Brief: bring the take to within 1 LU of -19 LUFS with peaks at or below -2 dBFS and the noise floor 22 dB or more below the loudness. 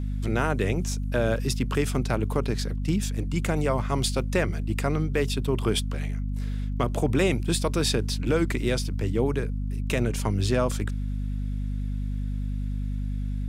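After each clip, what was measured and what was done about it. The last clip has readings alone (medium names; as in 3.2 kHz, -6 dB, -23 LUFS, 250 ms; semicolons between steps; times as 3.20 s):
tick rate 25 per s; hum 50 Hz; highest harmonic 250 Hz; hum level -26 dBFS; loudness -27.0 LUFS; peak level -11.0 dBFS; loudness target -19.0 LUFS
-> de-click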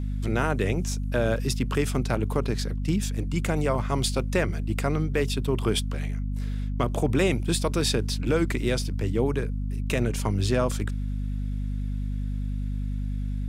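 tick rate 0 per s; hum 50 Hz; highest harmonic 250 Hz; hum level -26 dBFS
-> de-hum 50 Hz, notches 5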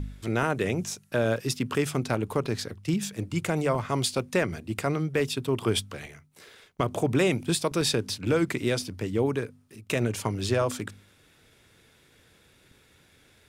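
hum not found; loudness -28.0 LUFS; peak level -12.5 dBFS; loudness target -19.0 LUFS
-> trim +9 dB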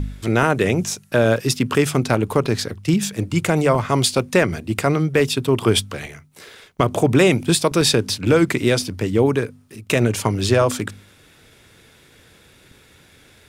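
loudness -19.0 LUFS; peak level -3.5 dBFS; noise floor -52 dBFS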